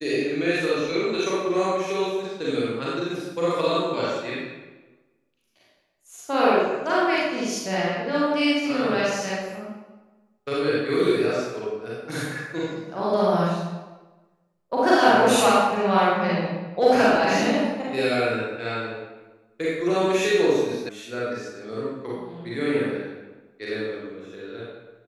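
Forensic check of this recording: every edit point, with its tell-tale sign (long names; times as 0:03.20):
0:20.89: cut off before it has died away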